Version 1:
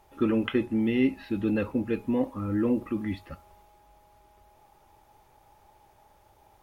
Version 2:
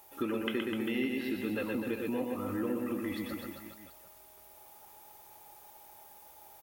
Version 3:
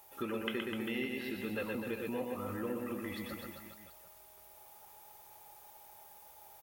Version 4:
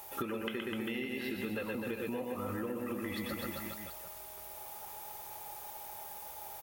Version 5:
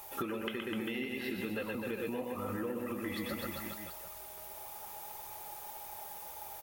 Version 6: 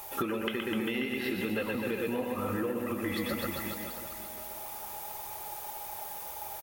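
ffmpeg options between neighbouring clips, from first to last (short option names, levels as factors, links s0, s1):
-af "aemphasis=mode=production:type=bsi,aecho=1:1:120|252|397.2|556.9|732.6:0.631|0.398|0.251|0.158|0.1,acompressor=threshold=0.02:ratio=2"
-af "equalizer=f=290:t=o:w=0.37:g=-11,volume=0.841"
-af "acompressor=threshold=0.00631:ratio=10,volume=3.16"
-af "flanger=delay=0.8:depth=5.6:regen=71:speed=1.7:shape=sinusoidal,volume=1.68"
-af "aecho=1:1:536|1072|1608:0.224|0.0694|0.0215,volume=1.78"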